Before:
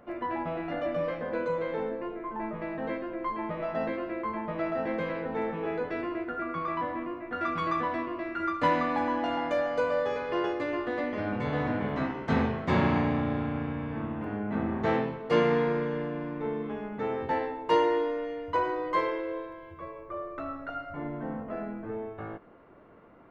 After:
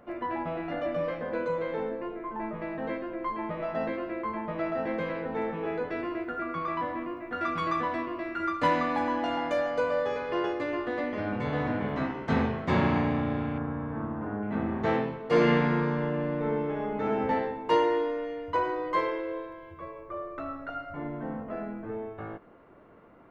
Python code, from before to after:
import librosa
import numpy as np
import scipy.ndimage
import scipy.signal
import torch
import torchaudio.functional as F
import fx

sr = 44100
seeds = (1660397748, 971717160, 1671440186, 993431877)

y = fx.high_shelf(x, sr, hz=5400.0, db=6.0, at=(6.05, 9.71))
y = fx.high_shelf_res(y, sr, hz=1900.0, db=-9.5, q=1.5, at=(13.58, 14.43))
y = fx.reverb_throw(y, sr, start_s=15.3, length_s=1.94, rt60_s=1.3, drr_db=-1.5)